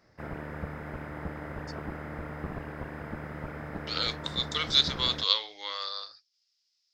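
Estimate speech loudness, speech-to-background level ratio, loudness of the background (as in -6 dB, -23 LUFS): -27.5 LUFS, 12.0 dB, -39.5 LUFS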